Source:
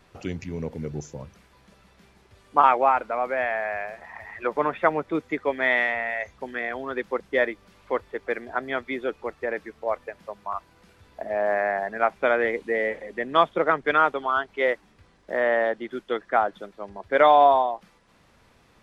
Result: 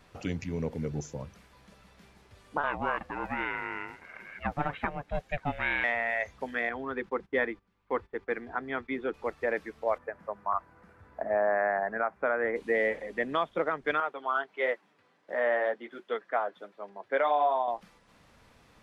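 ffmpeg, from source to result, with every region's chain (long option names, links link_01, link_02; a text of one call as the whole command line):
ffmpeg -i in.wav -filter_complex "[0:a]asettb=1/sr,asplit=3[link_01][link_02][link_03];[link_01]atrim=end=2.574[link_04];[link_02]atrim=start=2.57:end=5.84,asetpts=PTS-STARTPTS,afade=type=in:duration=0.004:curve=qsin,afade=type=out:start_time=3.266:duration=0.004:curve=qsin,acrossover=split=4300[link_05][link_06];[link_06]acompressor=threshold=-54dB:ratio=4:attack=1:release=60[link_07];[link_05][link_07]amix=inputs=2:normalize=0,equalizer=frequency=770:width_type=o:width=0.86:gain=-8,aeval=exprs='val(0)*sin(2*PI*290*n/s)':channel_layout=same[link_08];[link_03]atrim=start=5.836[link_09];[link_04][link_08]acrossfade=duration=0.004:curve1=hsin:curve2=qsin[link_10];[link_10][link_09]acrossfade=duration=0.004:curve1=qsin:curve2=hsin,asettb=1/sr,asplit=3[link_11][link_12][link_13];[link_11]atrim=end=6.694[link_14];[link_12]atrim=start=6.69:end=9.14,asetpts=PTS-STARTPTS,afade=type=in:duration=0.004:curve=qsin,afade=type=out:start_time=2.446:duration=0.004:curve=qsin,lowpass=frequency=1600:poles=1,equalizer=frequency=600:width_type=o:width=0.32:gain=-11.5,agate=range=-16dB:threshold=-51dB:ratio=16:release=100:detection=peak[link_15];[link_13]atrim=start=9.136[link_16];[link_14][link_15]acrossfade=duration=0.004:curve1=hsin:curve2=qsin[link_17];[link_17][link_16]acrossfade=duration=0.004:curve1=qsin:curve2=hsin,asettb=1/sr,asplit=3[link_18][link_19][link_20];[link_18]atrim=end=9.984[link_21];[link_19]atrim=start=9.98:end=12.56,asetpts=PTS-STARTPTS,afade=type=in:duration=0.004:curve=qsin,afade=type=out:start_time=2.576:duration=0.004:curve=qsin,highpass=48,highshelf=frequency=2300:width_type=q:width=1.5:gain=-13[link_22];[link_20]atrim=start=12.556[link_23];[link_21][link_22]acrossfade=duration=0.004:curve1=hsin:curve2=qsin[link_24];[link_24][link_23]acrossfade=duration=0.004:curve1=qsin:curve2=hsin,asettb=1/sr,asplit=3[link_25][link_26][link_27];[link_25]atrim=end=14.004[link_28];[link_26]atrim=start=14:end=17.68,asetpts=PTS-STARTPTS,afade=type=in:duration=0.004:curve=qsin,afade=type=out:start_time=3.676:duration=0.004:curve=qsin,highpass=frequency=130:width=0.5412,highpass=frequency=130:width=1.3066,bass=frequency=250:gain=-10,treble=frequency=4000:gain=-8,flanger=delay=4.3:depth=3.9:regen=-42:speed=1.4:shape=triangular[link_29];[link_27]atrim=start=17.676[link_30];[link_28][link_29]acrossfade=duration=0.004:curve1=hsin:curve2=qsin[link_31];[link_31][link_30]acrossfade=duration=0.004:curve1=qsin:curve2=hsin,bandreject=frequency=370:width=12,alimiter=limit=-15.5dB:level=0:latency=1:release=360,volume=-1dB" out.wav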